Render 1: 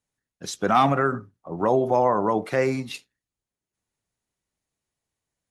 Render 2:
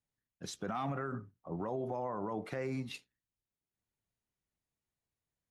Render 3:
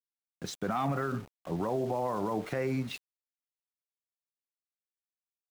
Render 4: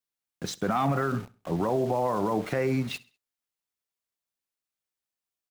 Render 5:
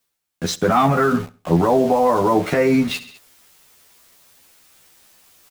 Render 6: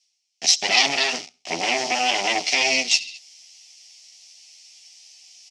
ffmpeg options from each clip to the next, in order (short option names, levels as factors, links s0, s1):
-af "bass=f=250:g=4,treble=f=4000:g=-4,acompressor=threshold=0.0794:ratio=6,alimiter=limit=0.1:level=0:latency=1:release=17,volume=0.376"
-af "highshelf=f=6900:g=-6.5,aeval=exprs='val(0)*gte(abs(val(0)),0.00282)':c=same,volume=2"
-af "aecho=1:1:66|132|198:0.0891|0.033|0.0122,volume=1.78"
-filter_complex "[0:a]areverse,acompressor=mode=upward:threshold=0.00891:ratio=2.5,areverse,asplit=2[s0][s1];[s1]adelay=12,volume=0.794[s2];[s0][s2]amix=inputs=2:normalize=0,volume=2.66"
-af "aeval=exprs='0.668*(cos(1*acos(clip(val(0)/0.668,-1,1)))-cos(1*PI/2))+0.266*(cos(6*acos(clip(val(0)/0.668,-1,1)))-cos(6*PI/2))':c=same,aexciter=amount=8.9:drive=7:freq=2100,highpass=360,equalizer=f=480:t=q:w=4:g=-8,equalizer=f=740:t=q:w=4:g=9,equalizer=f=1100:t=q:w=4:g=-8,equalizer=f=1600:t=q:w=4:g=-9,equalizer=f=3700:t=q:w=4:g=-7,equalizer=f=5500:t=q:w=4:g=7,lowpass=f=6000:w=0.5412,lowpass=f=6000:w=1.3066,volume=0.237"